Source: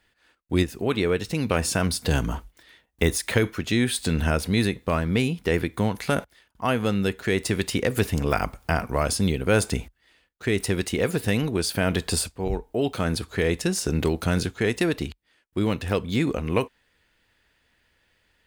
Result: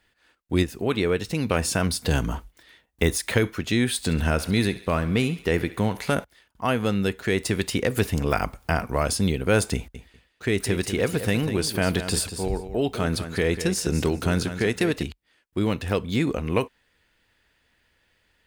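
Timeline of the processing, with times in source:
3.98–6.14 thinning echo 68 ms, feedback 61%, level -15 dB
9.75–15.03 feedback echo 0.195 s, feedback 18%, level -10.5 dB

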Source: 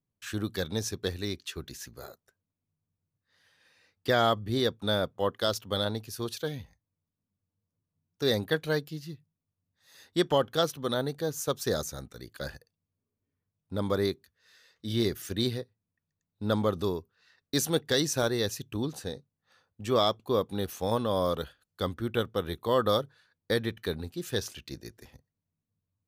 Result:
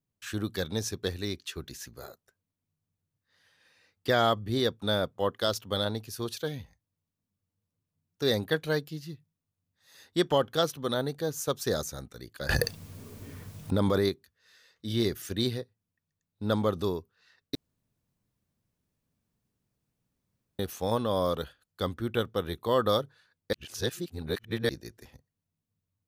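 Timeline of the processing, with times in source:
12.49–14.09 fast leveller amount 100%
17.55–20.59 room tone
23.53–24.69 reverse

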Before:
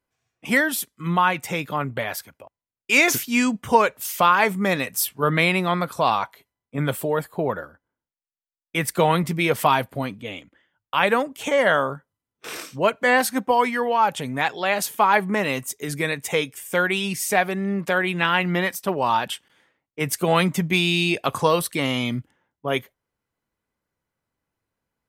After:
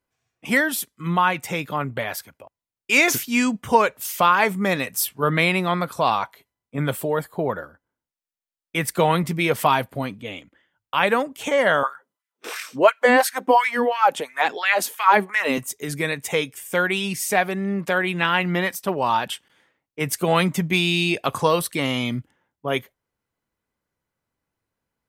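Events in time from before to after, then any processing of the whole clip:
7.14–7.61 notch 2600 Hz, Q 11
11.83–15.58 LFO high-pass sine 2.9 Hz 220–2000 Hz

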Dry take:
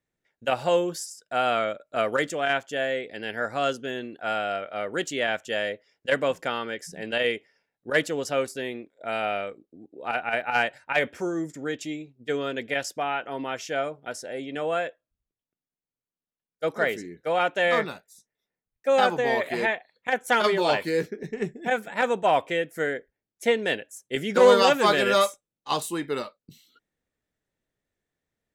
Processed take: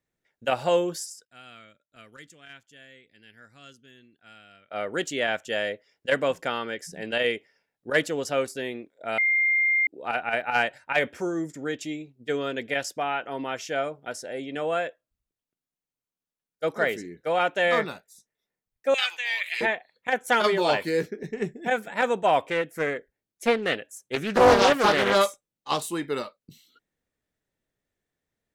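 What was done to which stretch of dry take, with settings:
1.25–4.71 passive tone stack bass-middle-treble 6-0-2
9.18–9.87 bleep 2110 Hz -19 dBFS
18.94–19.61 resonant high-pass 2500 Hz, resonance Q 2.8
22.5–25.92 Doppler distortion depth 0.47 ms

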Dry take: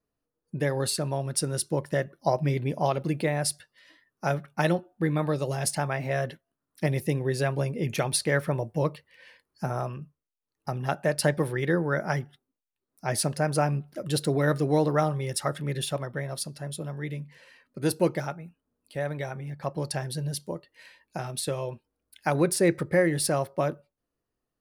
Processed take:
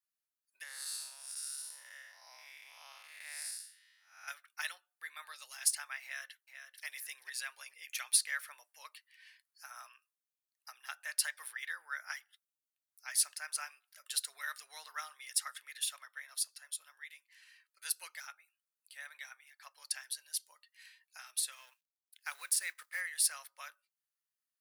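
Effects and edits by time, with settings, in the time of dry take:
0.63–4.28 time blur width 0.251 s
6.03–6.85 echo throw 0.44 s, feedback 20%, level -8.5 dB
21.52–23.01 G.711 law mismatch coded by A
whole clip: HPF 1400 Hz 24 dB/oct; high shelf 5200 Hz +9 dB; gain -7.5 dB

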